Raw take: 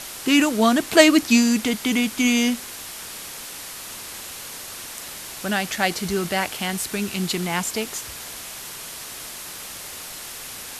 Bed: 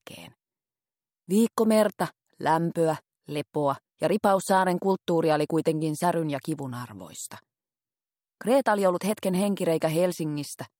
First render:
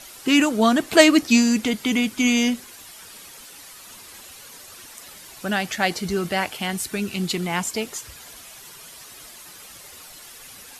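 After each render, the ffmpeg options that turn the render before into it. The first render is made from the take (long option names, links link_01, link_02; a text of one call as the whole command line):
ffmpeg -i in.wav -af "afftdn=noise_reduction=10:noise_floor=-36" out.wav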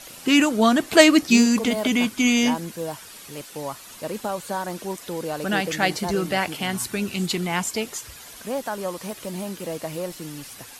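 ffmpeg -i in.wav -i bed.wav -filter_complex "[1:a]volume=-6.5dB[link_01];[0:a][link_01]amix=inputs=2:normalize=0" out.wav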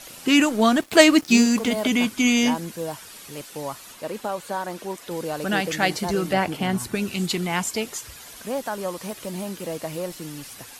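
ffmpeg -i in.wav -filter_complex "[0:a]asettb=1/sr,asplit=3[link_01][link_02][link_03];[link_01]atrim=end=0.474[link_04];[link_02]atrim=start=0.47:end=1.71,asetpts=PTS-STARTPTS,afade=type=in:duration=0.004:curve=qsin,afade=type=out:start_time=1.236:duration=0.004:curve=qsin,aeval=exprs='sgn(val(0))*max(abs(val(0))-0.0112,0)':channel_layout=same[link_05];[link_03]atrim=start=1.706[link_06];[link_04][link_05]acrossfade=duration=0.004:curve1=hsin:curve2=qsin[link_07];[link_07][link_06]acrossfade=duration=0.004:curve1=qsin:curve2=hsin,asettb=1/sr,asplit=3[link_08][link_09][link_10];[link_08]atrim=end=3.924[link_11];[link_09]atrim=start=3.92:end=5.11,asetpts=PTS-STARTPTS,afade=type=in:duration=0.004:curve=qsin,afade=type=out:start_time=1.186:duration=0.004:curve=qsin,bass=frequency=250:gain=-5,treble=frequency=4000:gain=-4[link_12];[link_10]atrim=start=5.106[link_13];[link_11][link_12]acrossfade=duration=0.004:curve1=hsin:curve2=qsin[link_14];[link_14][link_13]acrossfade=duration=0.004:curve1=qsin:curve2=hsin,asettb=1/sr,asplit=3[link_15][link_16][link_17];[link_15]atrim=end=6.334[link_18];[link_16]atrim=start=6.33:end=6.95,asetpts=PTS-STARTPTS,afade=type=in:duration=0.004:curve=qsin,afade=type=out:start_time=0.616:duration=0.004:curve=qsin,tiltshelf=frequency=1300:gain=5[link_19];[link_17]atrim=start=6.946[link_20];[link_18][link_19]acrossfade=duration=0.004:curve1=hsin:curve2=qsin[link_21];[link_21][link_20]acrossfade=duration=0.004:curve1=qsin:curve2=hsin" out.wav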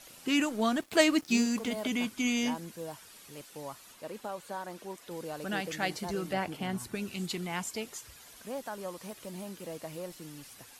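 ffmpeg -i in.wav -af "volume=-10.5dB" out.wav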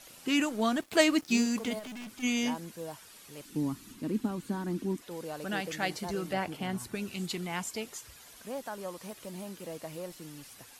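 ffmpeg -i in.wav -filter_complex "[0:a]asplit=3[link_01][link_02][link_03];[link_01]afade=type=out:start_time=1.78:duration=0.02[link_04];[link_02]aeval=exprs='(tanh(112*val(0)+0.2)-tanh(0.2))/112':channel_layout=same,afade=type=in:start_time=1.78:duration=0.02,afade=type=out:start_time=2.22:duration=0.02[link_05];[link_03]afade=type=in:start_time=2.22:duration=0.02[link_06];[link_04][link_05][link_06]amix=inputs=3:normalize=0,asettb=1/sr,asplit=3[link_07][link_08][link_09];[link_07]atrim=end=3.454[link_10];[link_08]atrim=start=3.45:end=5.02,asetpts=PTS-STARTPTS,afade=type=in:duration=0.004:curve=qsin,afade=type=out:start_time=1.566:duration=0.004:curve=qsin,lowshelf=frequency=400:width_type=q:width=3:gain=12.5[link_11];[link_09]atrim=start=5.016[link_12];[link_10][link_11]acrossfade=duration=0.004:curve1=hsin:curve2=qsin[link_13];[link_13][link_12]acrossfade=duration=0.004:curve1=qsin:curve2=hsin" out.wav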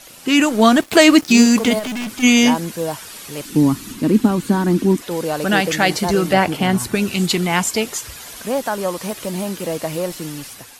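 ffmpeg -i in.wav -af "dynaudnorm=framelen=180:gausssize=5:maxgain=7dB,alimiter=level_in=10.5dB:limit=-1dB:release=50:level=0:latency=1" out.wav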